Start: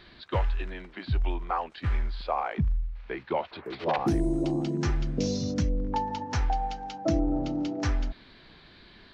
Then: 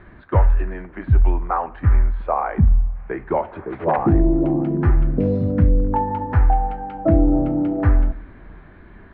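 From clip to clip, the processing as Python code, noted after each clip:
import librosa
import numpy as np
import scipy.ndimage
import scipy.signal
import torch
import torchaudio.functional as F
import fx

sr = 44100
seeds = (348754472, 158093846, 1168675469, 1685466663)

y = scipy.signal.sosfilt(scipy.signal.butter(4, 1800.0, 'lowpass', fs=sr, output='sos'), x)
y = fx.low_shelf(y, sr, hz=140.0, db=6.0)
y = fx.rev_double_slope(y, sr, seeds[0], early_s=0.51, late_s=3.8, knee_db=-22, drr_db=12.0)
y = y * 10.0 ** (7.5 / 20.0)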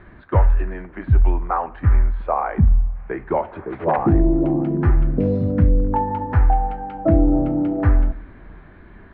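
y = x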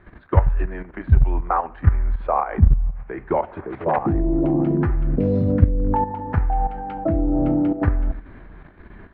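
y = fx.level_steps(x, sr, step_db=11)
y = y * 10.0 ** (3.5 / 20.0)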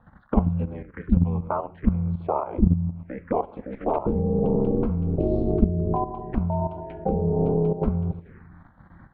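y = fx.peak_eq(x, sr, hz=470.0, db=4.5, octaves=2.9)
y = y * np.sin(2.0 * np.pi * 130.0 * np.arange(len(y)) / sr)
y = fx.env_phaser(y, sr, low_hz=370.0, high_hz=1800.0, full_db=-21.5)
y = y * 10.0 ** (-3.0 / 20.0)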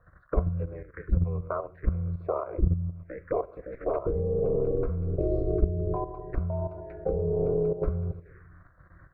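y = fx.fixed_phaser(x, sr, hz=850.0, stages=6)
y = y * 10.0 ** (-1.0 / 20.0)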